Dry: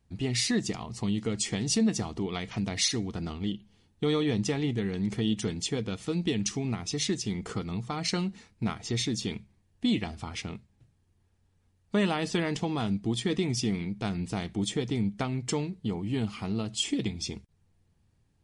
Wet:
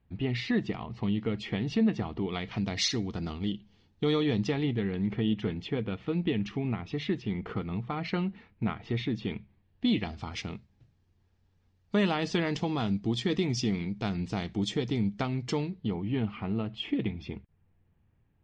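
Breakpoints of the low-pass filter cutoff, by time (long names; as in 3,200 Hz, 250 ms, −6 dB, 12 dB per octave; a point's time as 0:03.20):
low-pass filter 24 dB per octave
0:02.09 3,200 Hz
0:02.83 5,600 Hz
0:04.10 5,600 Hz
0:05.12 3,000 Hz
0:09.30 3,000 Hz
0:10.35 5,900 Hz
0:15.39 5,900 Hz
0:16.29 2,800 Hz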